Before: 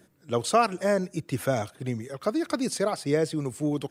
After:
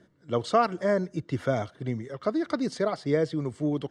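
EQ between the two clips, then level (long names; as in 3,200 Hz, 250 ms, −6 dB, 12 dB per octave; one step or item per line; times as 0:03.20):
Butterworth band-reject 2,500 Hz, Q 7
high-frequency loss of the air 130 metres
notch filter 800 Hz, Q 12
0.0 dB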